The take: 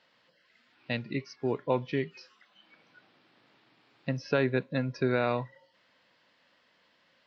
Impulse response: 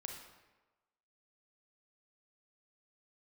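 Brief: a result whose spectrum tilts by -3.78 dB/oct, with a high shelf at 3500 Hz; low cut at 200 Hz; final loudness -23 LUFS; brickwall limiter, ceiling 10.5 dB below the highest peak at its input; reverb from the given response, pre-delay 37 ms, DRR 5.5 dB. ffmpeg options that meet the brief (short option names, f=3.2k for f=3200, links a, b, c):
-filter_complex "[0:a]highpass=200,highshelf=f=3.5k:g=8.5,alimiter=limit=-22.5dB:level=0:latency=1,asplit=2[a][b];[1:a]atrim=start_sample=2205,adelay=37[c];[b][c]afir=irnorm=-1:irlink=0,volume=-3dB[d];[a][d]amix=inputs=2:normalize=0,volume=12dB"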